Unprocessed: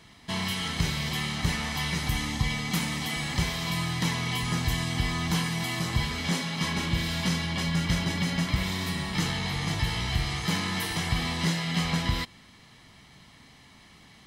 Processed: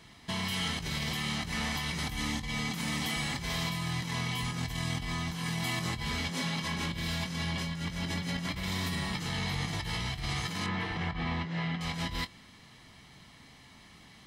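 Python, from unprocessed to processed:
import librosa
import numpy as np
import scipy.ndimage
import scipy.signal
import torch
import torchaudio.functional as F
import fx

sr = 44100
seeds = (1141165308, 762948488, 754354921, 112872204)

y = fx.lowpass(x, sr, hz=2400.0, slope=12, at=(10.66, 11.81))
y = fx.over_compress(y, sr, threshold_db=-31.0, ratio=-1.0)
y = fx.doubler(y, sr, ms=23.0, db=-13.0)
y = y * librosa.db_to_amplitude(-3.5)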